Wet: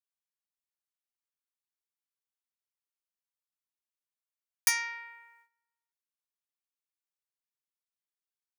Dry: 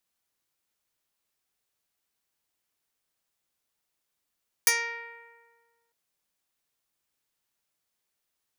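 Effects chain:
noise gate −58 dBFS, range −15 dB
Chebyshev high-pass filter 950 Hz, order 3
level −2 dB

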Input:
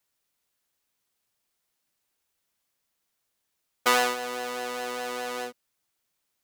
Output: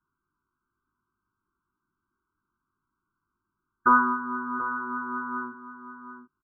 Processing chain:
elliptic band-stop filter 370–1,000 Hz, stop band 40 dB
wave folding −10.5 dBFS
linear-phase brick-wall low-pass 1,600 Hz
double-tracking delay 20 ms −4.5 dB
single-tap delay 731 ms −12 dB
level +8 dB

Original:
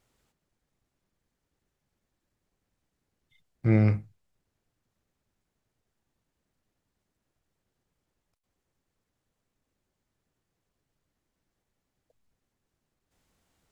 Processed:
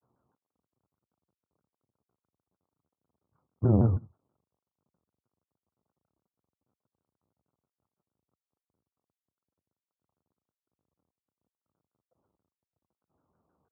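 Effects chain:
variable-slope delta modulation 32 kbit/s
Chebyshev low-pass filter 1,300 Hz, order 6
granular cloud, spray 33 ms, pitch spread up and down by 0 semitones
high-pass filter 75 Hz 24 dB per octave
pitch modulation by a square or saw wave saw down 6.3 Hz, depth 250 cents
level +2 dB

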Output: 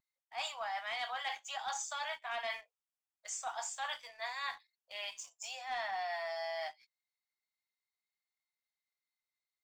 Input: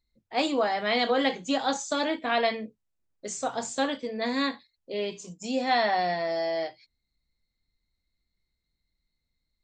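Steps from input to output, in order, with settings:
Butterworth high-pass 720 Hz 48 dB per octave
notch filter 4,100 Hz, Q 6
leveller curve on the samples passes 1
reversed playback
downward compressor, threshold −32 dBFS, peak gain reduction 12 dB
reversed playback
pitch vibrato 0.3 Hz 6.6 cents
level −4.5 dB

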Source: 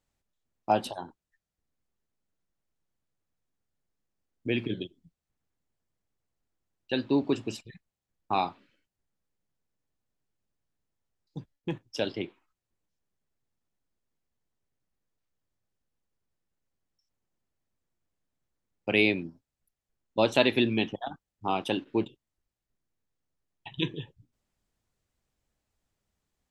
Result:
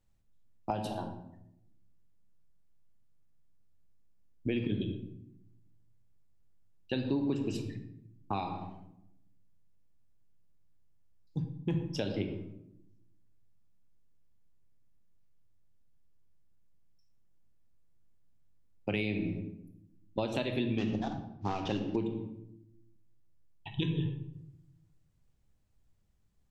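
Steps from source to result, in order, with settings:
0:20.78–0:21.96: variable-slope delta modulation 32 kbit/s
on a send at −6.5 dB: convolution reverb RT60 0.85 s, pre-delay 20 ms
on the sum: downward compressor 6 to 1, threshold −29 dBFS, peak gain reduction 13 dB
low-shelf EQ 220 Hz +11.5 dB
level −3 dB

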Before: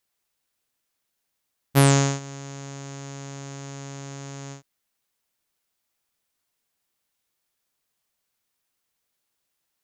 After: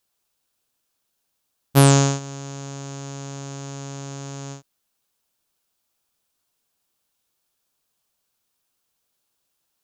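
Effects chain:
parametric band 2,000 Hz −7 dB 0.43 octaves
level +3.5 dB

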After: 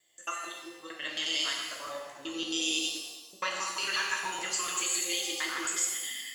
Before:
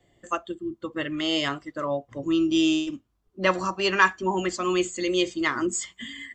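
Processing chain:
reversed piece by piece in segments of 90 ms
first difference
brickwall limiter −27.5 dBFS, peak gain reduction 11 dB
regular buffer underruns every 0.14 s, samples 256, repeat, from 0:00.74
reverb with rising layers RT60 1.1 s, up +7 semitones, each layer −8 dB, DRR −1 dB
level +5.5 dB

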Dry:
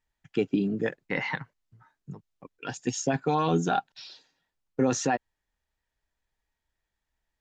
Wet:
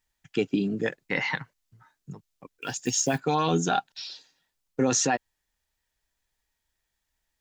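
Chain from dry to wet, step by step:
0:02.53–0:03.21: one scale factor per block 7 bits
high-shelf EQ 3,000 Hz +10 dB

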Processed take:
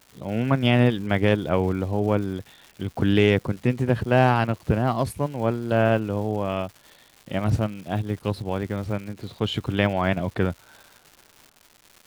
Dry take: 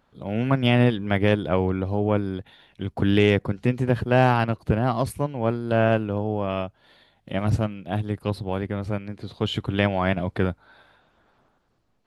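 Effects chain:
surface crackle 330 per second −37 dBFS

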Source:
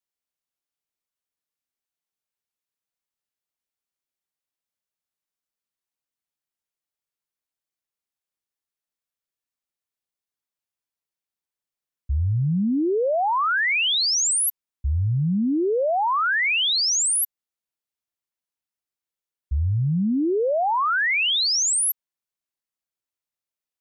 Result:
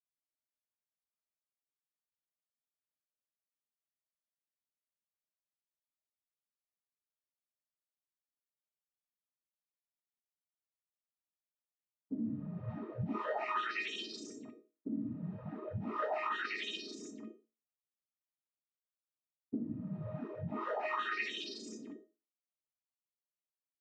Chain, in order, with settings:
lower of the sound and its delayed copy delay 2 ms
frequency shifter −330 Hz
comb filter 7.4 ms, depth 31%
downward compressor 4 to 1, threshold −24 dBFS, peak gain reduction 5 dB
cochlear-implant simulation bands 12
low-pass that shuts in the quiet parts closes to 1,100 Hz, open at −13 dBFS
tuned comb filter 620 Hz, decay 0.31 s, mix 90%
convolution reverb RT60 0.35 s, pre-delay 4 ms, DRR 15.5 dB
level +6 dB

